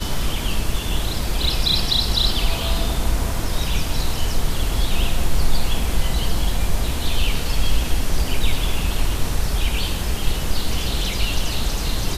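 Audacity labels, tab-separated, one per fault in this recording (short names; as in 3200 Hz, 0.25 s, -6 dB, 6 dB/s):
1.440000	1.440000	gap 2.2 ms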